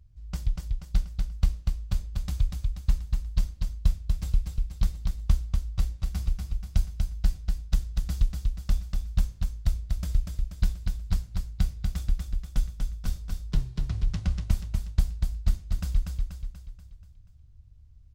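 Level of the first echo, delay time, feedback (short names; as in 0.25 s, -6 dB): -4.0 dB, 0.241 s, 50%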